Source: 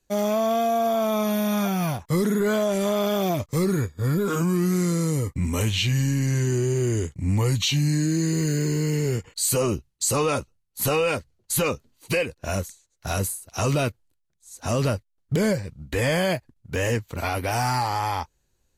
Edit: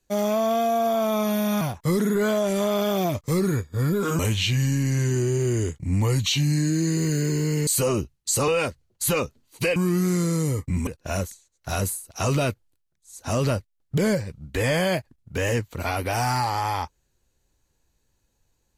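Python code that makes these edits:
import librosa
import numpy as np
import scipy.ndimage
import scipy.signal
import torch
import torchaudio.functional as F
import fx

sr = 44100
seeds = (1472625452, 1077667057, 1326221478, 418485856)

y = fx.edit(x, sr, fx.cut(start_s=1.61, length_s=0.25),
    fx.move(start_s=4.44, length_s=1.11, to_s=12.25),
    fx.cut(start_s=9.03, length_s=0.38),
    fx.cut(start_s=10.22, length_s=0.75), tone=tone)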